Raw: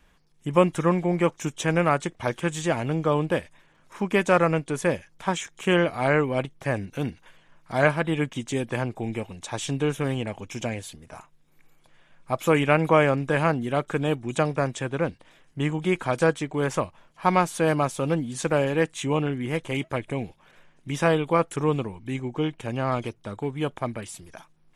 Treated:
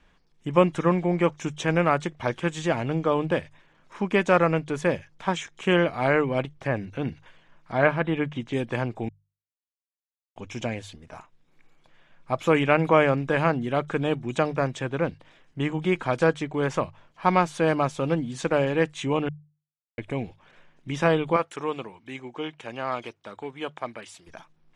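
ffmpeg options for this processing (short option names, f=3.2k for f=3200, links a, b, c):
-filter_complex "[0:a]asettb=1/sr,asplit=3[a][b][c];[a]atrim=end=6.674[d];[b]atrim=start=6.67:end=8.53,asetpts=PTS-STARTPTS,afade=t=in:d=0.004:c=qsin,afade=t=out:st=1.856:d=0.004:c=qsin,acrossover=split=3500[e][f];[f]acompressor=threshold=-58dB:ratio=4:attack=1:release=60[g];[e][g]amix=inputs=2:normalize=0[h];[c]atrim=start=8.526[i];[d][h]acrossfade=d=0.004:c1=hsin:c2=qsin[j];[j][i]acrossfade=d=0.004:c1=qsin:c2=hsin,asettb=1/sr,asplit=3[k][l][m];[k]atrim=end=21.364[n];[l]atrim=start=21.36:end=24.27,asetpts=PTS-STARTPTS,afade=t=in:d=0.004:c=qsin,afade=t=out:st=2.906:d=0.004:c=qsin,highpass=f=670:p=1[o];[m]atrim=start=24.266[p];[n][o]acrossfade=d=0.004:c1=hsin:c2=qsin[q];[q][p]acrossfade=d=0.004:c1=qsin:c2=hsin,asplit=5[r][s][t][u][v];[r]atrim=end=9.09,asetpts=PTS-STARTPTS,afade=t=out:st=9.086:d=0.004:c=hsin[w];[s]atrim=start=9.09:end=10.36,asetpts=PTS-STARTPTS,volume=0[x];[t]atrim=start=10.36:end=19.29,asetpts=PTS-STARTPTS,afade=t=in:d=0.004:c=hsin,afade=t=out:st=8.926:d=0.004:c=hsin[y];[u]atrim=start=19.29:end=19.98,asetpts=PTS-STARTPTS,volume=0[z];[v]atrim=start=19.98,asetpts=PTS-STARTPTS,afade=t=in:d=0.004:c=hsin[aa];[w][x][y][z][aa]concat=n=5:v=0:a=1,lowpass=5.6k,bandreject=f=50:t=h:w=6,bandreject=f=100:t=h:w=6,bandreject=f=150:t=h:w=6"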